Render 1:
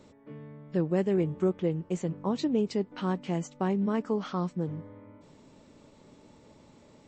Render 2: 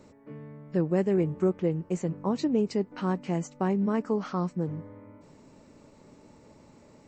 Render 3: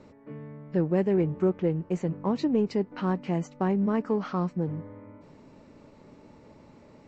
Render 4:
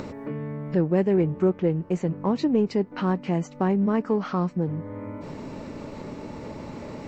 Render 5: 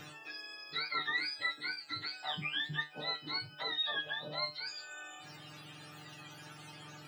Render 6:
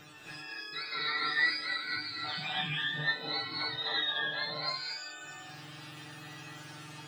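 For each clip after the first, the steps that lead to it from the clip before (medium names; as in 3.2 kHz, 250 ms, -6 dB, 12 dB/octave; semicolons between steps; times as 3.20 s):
peaking EQ 3.4 kHz -9 dB 0.38 oct; trim +1.5 dB
low-pass 4.3 kHz 12 dB/octave; in parallel at -11.5 dB: saturation -30 dBFS, distortion -7 dB
upward compressor, threshold -27 dBFS; trim +3 dB
spectrum inverted on a logarithmic axis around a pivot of 860 Hz; bit crusher 11-bit; feedback comb 150 Hz, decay 0.23 s, harmonics all, mix 90%
gated-style reverb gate 330 ms rising, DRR -6.5 dB; trim -3.5 dB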